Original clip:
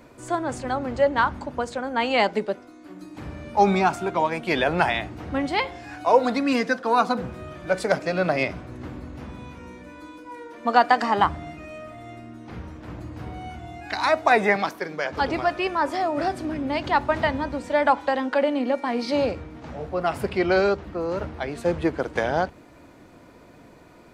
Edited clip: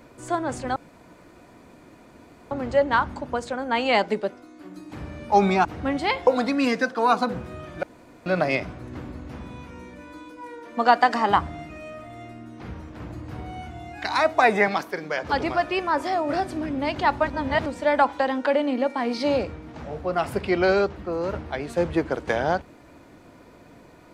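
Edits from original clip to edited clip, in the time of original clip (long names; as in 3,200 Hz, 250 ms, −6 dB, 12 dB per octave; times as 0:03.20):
0:00.76: splice in room tone 1.75 s
0:03.90–0:05.14: remove
0:05.76–0:06.15: remove
0:07.71–0:08.14: fill with room tone
0:17.16–0:17.54: reverse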